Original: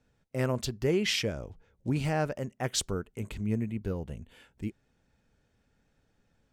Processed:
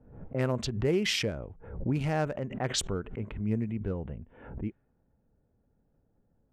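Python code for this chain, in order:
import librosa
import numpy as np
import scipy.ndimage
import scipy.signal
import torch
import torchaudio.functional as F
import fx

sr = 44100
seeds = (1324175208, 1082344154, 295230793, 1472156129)

y = fx.wiener(x, sr, points=9)
y = fx.env_lowpass(y, sr, base_hz=730.0, full_db=-25.0)
y = fx.pre_swell(y, sr, db_per_s=83.0)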